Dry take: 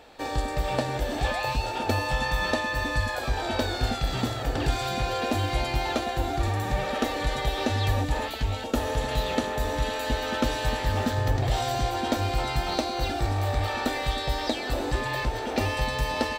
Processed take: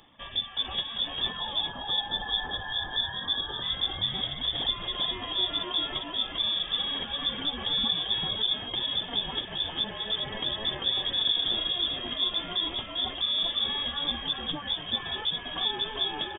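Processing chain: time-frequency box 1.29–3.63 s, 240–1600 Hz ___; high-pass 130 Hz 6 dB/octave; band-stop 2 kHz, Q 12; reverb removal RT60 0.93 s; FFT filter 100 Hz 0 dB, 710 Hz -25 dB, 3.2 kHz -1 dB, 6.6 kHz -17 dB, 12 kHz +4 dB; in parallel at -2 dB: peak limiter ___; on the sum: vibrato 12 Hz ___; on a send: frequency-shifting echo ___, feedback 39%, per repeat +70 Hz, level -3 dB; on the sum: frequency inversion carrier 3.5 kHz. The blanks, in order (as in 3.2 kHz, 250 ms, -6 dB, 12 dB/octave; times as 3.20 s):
-20 dB, -29.5 dBFS, 5.7 cents, 394 ms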